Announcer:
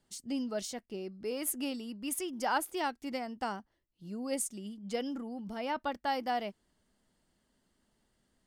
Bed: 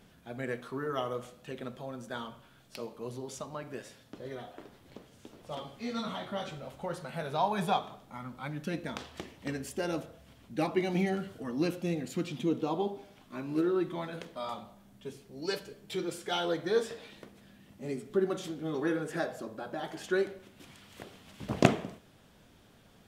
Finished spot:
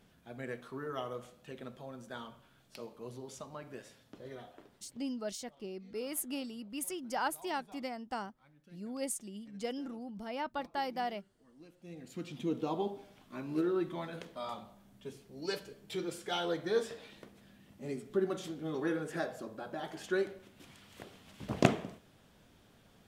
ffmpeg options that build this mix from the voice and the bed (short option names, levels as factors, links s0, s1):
-filter_complex "[0:a]adelay=4700,volume=0.708[s0];[1:a]volume=7.94,afade=t=out:st=4.4:d=0.8:silence=0.0891251,afade=t=in:st=11.77:d=0.87:silence=0.0668344[s1];[s0][s1]amix=inputs=2:normalize=0"